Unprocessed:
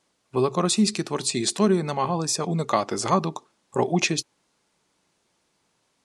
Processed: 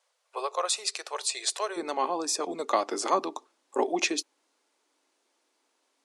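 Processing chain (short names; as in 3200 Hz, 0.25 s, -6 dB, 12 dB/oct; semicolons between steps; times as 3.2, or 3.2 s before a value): elliptic high-pass 500 Hz, stop band 60 dB, from 1.76 s 270 Hz; gain -2.5 dB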